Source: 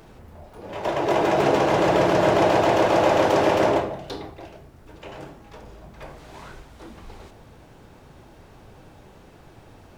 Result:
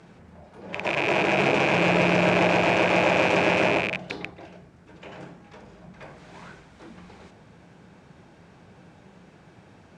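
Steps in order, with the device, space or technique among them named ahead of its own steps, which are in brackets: car door speaker with a rattle (rattle on loud lows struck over -35 dBFS, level -12 dBFS; cabinet simulation 86–8700 Hz, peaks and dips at 180 Hz +10 dB, 1.6 kHz +4 dB, 2.3 kHz +4 dB); trim -4 dB

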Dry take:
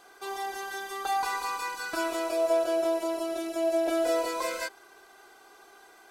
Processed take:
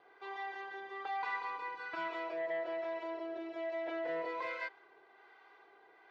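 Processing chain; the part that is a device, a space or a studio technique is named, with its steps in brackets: guitar amplifier with harmonic tremolo (harmonic tremolo 1.2 Hz, depth 50%, crossover 770 Hz; saturation -27.5 dBFS, distortion -13 dB; cabinet simulation 110–3600 Hz, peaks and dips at 140 Hz +3 dB, 210 Hz -8 dB, 460 Hz +5 dB, 930 Hz +6 dB, 2 kHz +9 dB); trim -7.5 dB

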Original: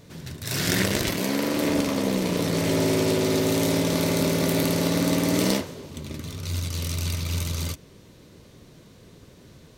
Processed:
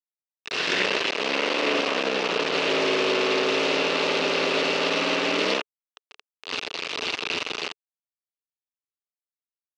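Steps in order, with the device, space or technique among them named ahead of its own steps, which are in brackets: hand-held game console (bit crusher 4-bit; cabinet simulation 420–4800 Hz, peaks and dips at 430 Hz +6 dB, 1.2 kHz +3 dB, 2.7 kHz +9 dB)

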